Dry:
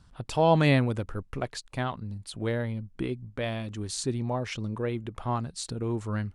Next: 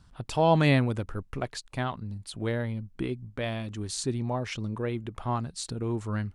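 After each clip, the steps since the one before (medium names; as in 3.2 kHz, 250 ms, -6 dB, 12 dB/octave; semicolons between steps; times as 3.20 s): peaking EQ 510 Hz -2 dB 0.37 oct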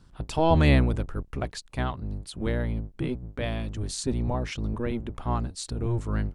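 octave divider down 1 oct, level +2 dB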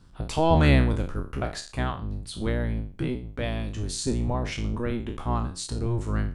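spectral sustain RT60 0.38 s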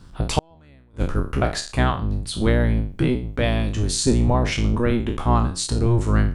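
inverted gate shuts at -14 dBFS, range -40 dB; trim +8.5 dB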